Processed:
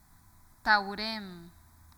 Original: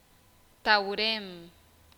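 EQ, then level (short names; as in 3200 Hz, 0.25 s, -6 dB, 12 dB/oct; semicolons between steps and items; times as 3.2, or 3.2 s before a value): low shelf 140 Hz +3.5 dB; fixed phaser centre 1200 Hz, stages 4; +1.5 dB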